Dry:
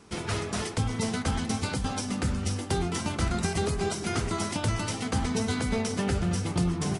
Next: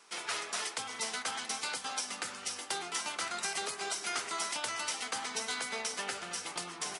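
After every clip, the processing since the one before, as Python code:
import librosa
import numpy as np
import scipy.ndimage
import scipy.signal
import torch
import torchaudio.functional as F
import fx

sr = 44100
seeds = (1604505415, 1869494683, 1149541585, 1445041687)

y = scipy.signal.sosfilt(scipy.signal.bessel(2, 1100.0, 'highpass', norm='mag', fs=sr, output='sos'), x)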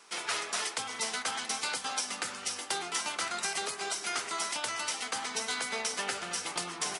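y = fx.rider(x, sr, range_db=10, speed_s=2.0)
y = F.gain(torch.from_numpy(y), 2.5).numpy()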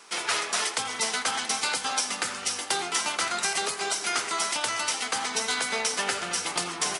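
y = x + 10.0 ** (-16.0 / 20.0) * np.pad(x, (int(83 * sr / 1000.0), 0))[:len(x)]
y = F.gain(torch.from_numpy(y), 6.0).numpy()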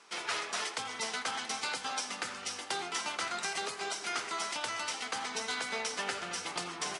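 y = fx.air_absorb(x, sr, metres=52.0)
y = F.gain(torch.from_numpy(y), -6.5).numpy()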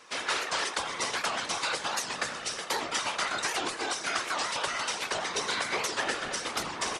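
y = fx.small_body(x, sr, hz=(530.0, 1100.0, 1700.0, 3700.0), ring_ms=45, db=8)
y = fx.whisperise(y, sr, seeds[0])
y = fx.record_warp(y, sr, rpm=78.0, depth_cents=250.0)
y = F.gain(torch.from_numpy(y), 4.0).numpy()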